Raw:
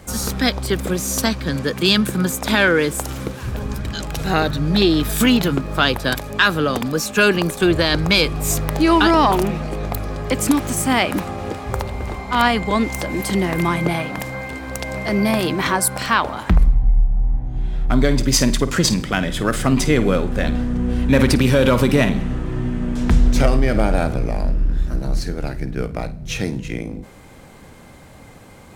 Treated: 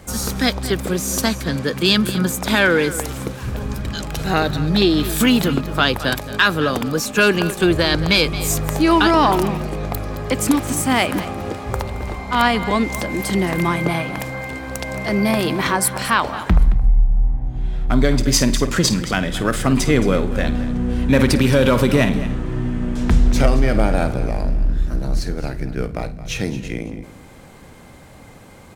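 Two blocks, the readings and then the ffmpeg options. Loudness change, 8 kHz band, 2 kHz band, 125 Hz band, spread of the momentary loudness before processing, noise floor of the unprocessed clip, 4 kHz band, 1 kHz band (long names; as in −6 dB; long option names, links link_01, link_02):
0.0 dB, 0.0 dB, 0.0 dB, 0.0 dB, 11 LU, −42 dBFS, 0.0 dB, 0.0 dB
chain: -af "aecho=1:1:221:0.188"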